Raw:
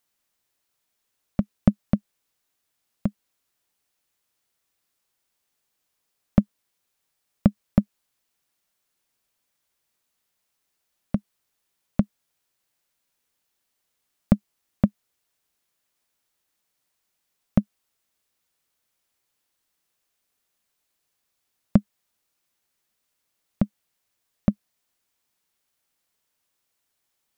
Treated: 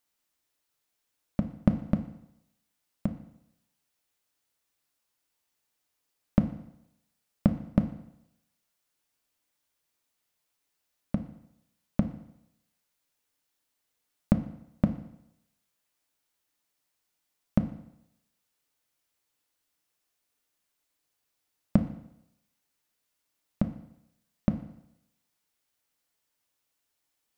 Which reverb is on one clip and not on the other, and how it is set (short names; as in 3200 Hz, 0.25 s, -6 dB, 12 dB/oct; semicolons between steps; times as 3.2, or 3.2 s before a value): FDN reverb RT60 0.82 s, low-frequency decay 0.9×, high-frequency decay 0.95×, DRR 6 dB; gain -4 dB